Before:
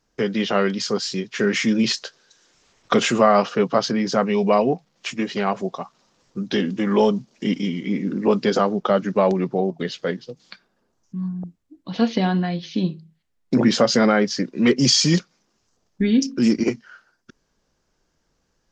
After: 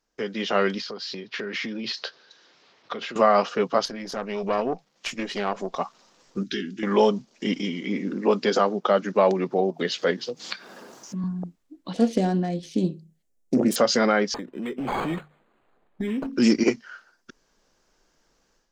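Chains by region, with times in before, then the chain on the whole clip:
0:00.80–0:03.16: Chebyshev band-pass filter 100–4,500 Hz, order 3 + downward compressor 10 to 1, threshold −30 dBFS
0:03.85–0:05.76: downward compressor 1.5 to 1, threshold −29 dBFS + tube saturation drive 17 dB, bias 0.75
0:06.43–0:06.83: elliptic band-stop filter 390–1,400 Hz + downward compressor 1.5 to 1, threshold −36 dBFS
0:07.60–0:11.24: upward compression, threshold −25 dBFS + high-pass filter 140 Hz
0:11.93–0:13.76: phase distortion by the signal itself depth 0.14 ms + flat-topped bell 2,000 Hz −12 dB 2.8 octaves
0:14.34–0:16.33: mains-hum notches 50/100/150 Hz + downward compressor 10 to 1, threshold −24 dBFS + linearly interpolated sample-rate reduction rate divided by 8×
whole clip: parametric band 91 Hz −12.5 dB 2 octaves; automatic gain control gain up to 11 dB; level −6 dB

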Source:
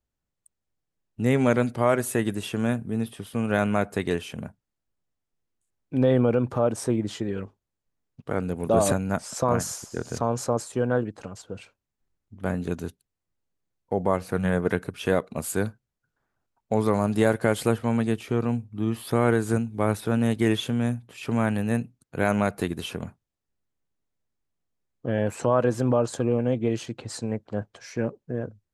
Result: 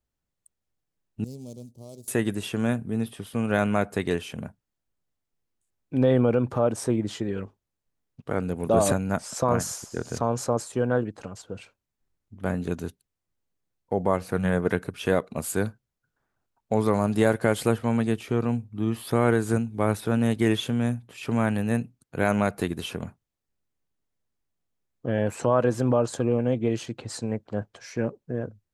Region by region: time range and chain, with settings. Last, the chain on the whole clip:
0:01.24–0:02.08: running median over 15 samples + Chebyshev band-stop filter 450–5,900 Hz + guitar amp tone stack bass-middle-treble 5-5-5
whole clip: no processing

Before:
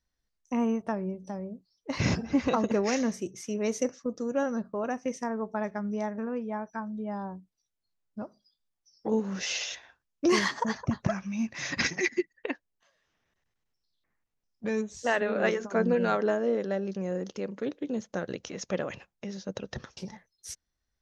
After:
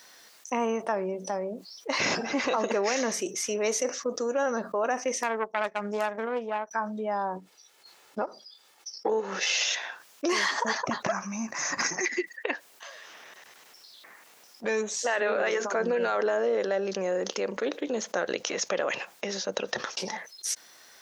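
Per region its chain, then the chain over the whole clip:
0:05.23–0:06.71: phase distortion by the signal itself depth 0.27 ms + expander for the loud parts 2.5 to 1, over −53 dBFS
0:07.36–0:09.53: high-shelf EQ 7,300 Hz −10 dB + comb filter 2.3 ms, depth 35% + transient designer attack +10 dB, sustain −8 dB
0:11.12–0:12.06: drawn EQ curve 170 Hz 0 dB, 500 Hz −7 dB, 1,100 Hz 0 dB, 3,500 Hz −21 dB, 6,100 Hz −2 dB + hard clipping −22.5 dBFS
whole clip: high-pass filter 510 Hz 12 dB per octave; brickwall limiter −24 dBFS; envelope flattener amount 50%; level +5.5 dB

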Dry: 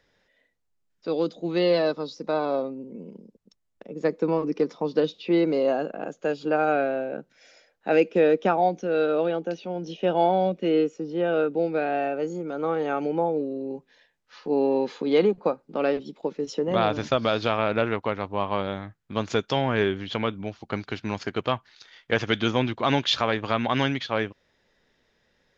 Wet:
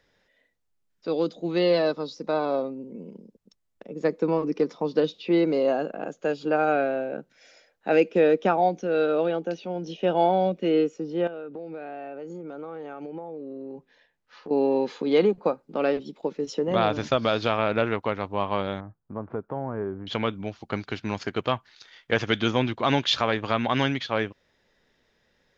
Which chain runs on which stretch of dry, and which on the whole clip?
0:11.27–0:14.51: high-shelf EQ 4,000 Hz −8.5 dB + downward compressor 10 to 1, threshold −33 dBFS
0:18.80–0:20.07: low-pass filter 1,200 Hz 24 dB per octave + downward compressor 1.5 to 1, threshold −37 dBFS
whole clip: no processing

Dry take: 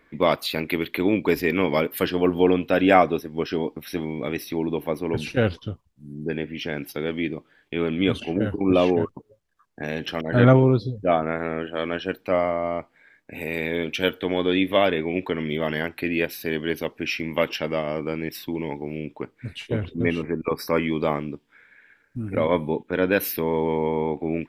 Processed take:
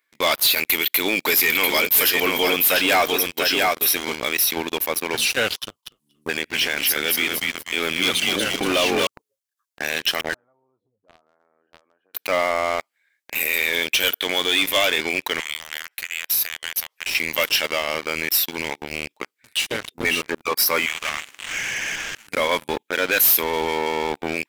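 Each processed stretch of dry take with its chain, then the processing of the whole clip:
0:00.57–0:04.15: high-shelf EQ 5,600 Hz +5 dB + single-tap delay 693 ms −6 dB
0:05.59–0:09.07: gain into a clipping stage and back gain 12 dB + echo with shifted repeats 238 ms, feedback 41%, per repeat −64 Hz, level −4 dB
0:10.34–0:12.14: downward compressor 12 to 1, threshold −29 dBFS + transistor ladder low-pass 1,200 Hz, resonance 35%
0:15.40–0:17.15: Bessel high-pass filter 810 Hz, order 6 + downward compressor 16 to 1, threshold −38 dBFS
0:20.86–0:22.27: linear delta modulator 16 kbit/s, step −29 dBFS + high-pass filter 1,500 Hz + high-frequency loss of the air 120 metres
whole clip: first difference; leveller curve on the samples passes 5; brickwall limiter −21.5 dBFS; level +9 dB

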